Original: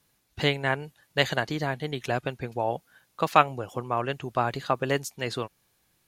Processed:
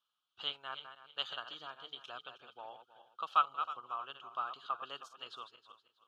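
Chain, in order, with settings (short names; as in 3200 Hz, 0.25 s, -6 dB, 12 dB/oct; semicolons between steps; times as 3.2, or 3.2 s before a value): regenerating reverse delay 0.159 s, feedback 49%, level -9 dB; double band-pass 2000 Hz, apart 1.3 oct; gain -4 dB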